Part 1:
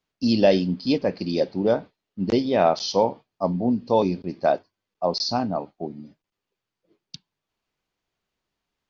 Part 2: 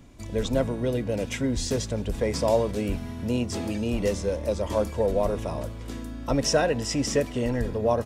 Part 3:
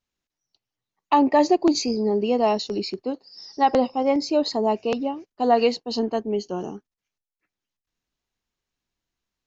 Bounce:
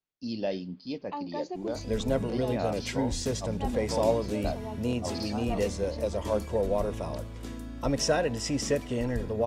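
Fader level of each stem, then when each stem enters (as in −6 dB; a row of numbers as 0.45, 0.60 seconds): −14.0, −3.5, −19.0 decibels; 0.00, 1.55, 0.00 seconds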